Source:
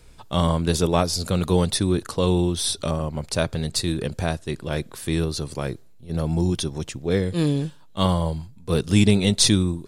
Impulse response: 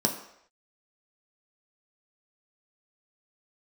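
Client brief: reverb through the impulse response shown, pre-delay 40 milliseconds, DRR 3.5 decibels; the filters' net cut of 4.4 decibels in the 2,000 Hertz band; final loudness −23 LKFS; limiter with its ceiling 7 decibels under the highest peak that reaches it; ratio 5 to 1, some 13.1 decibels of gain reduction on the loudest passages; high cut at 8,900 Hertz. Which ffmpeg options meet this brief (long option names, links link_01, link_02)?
-filter_complex "[0:a]lowpass=8900,equalizer=frequency=2000:width_type=o:gain=-6,acompressor=threshold=-27dB:ratio=5,alimiter=limit=-21dB:level=0:latency=1,asplit=2[link_01][link_02];[1:a]atrim=start_sample=2205,adelay=40[link_03];[link_02][link_03]afir=irnorm=-1:irlink=0,volume=-13dB[link_04];[link_01][link_04]amix=inputs=2:normalize=0,volume=6dB"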